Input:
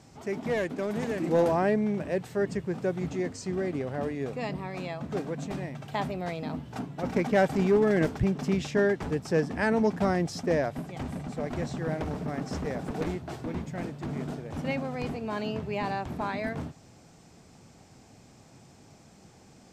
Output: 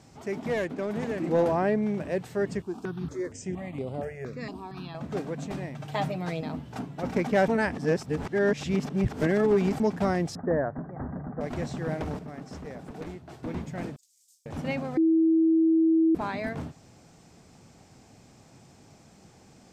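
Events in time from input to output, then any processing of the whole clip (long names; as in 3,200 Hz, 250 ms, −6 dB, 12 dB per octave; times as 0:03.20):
0:00.65–0:01.83: high-shelf EQ 4,600 Hz −6.5 dB
0:02.62–0:04.95: step-sequenced phaser 4.3 Hz 530–6,000 Hz
0:05.79–0:06.41: comb filter 6.5 ms, depth 73%
0:07.48–0:09.80: reverse
0:10.35–0:11.41: Butterworth low-pass 1,800 Hz 72 dB per octave
0:12.19–0:13.43: clip gain −7.5 dB
0:13.96–0:14.46: inverse Chebyshev high-pass filter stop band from 1,100 Hz, stop band 80 dB
0:14.97–0:16.15: beep over 324 Hz −18 dBFS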